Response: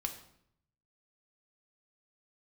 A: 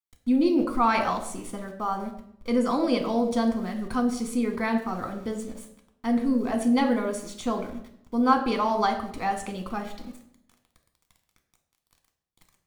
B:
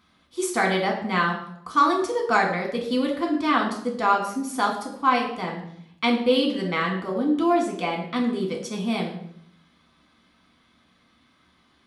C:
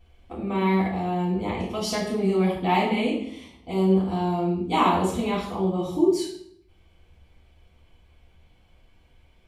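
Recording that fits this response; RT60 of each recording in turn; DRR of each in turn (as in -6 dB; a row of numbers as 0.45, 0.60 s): A; 0.70, 0.70, 0.70 s; 4.0, -0.5, -7.0 dB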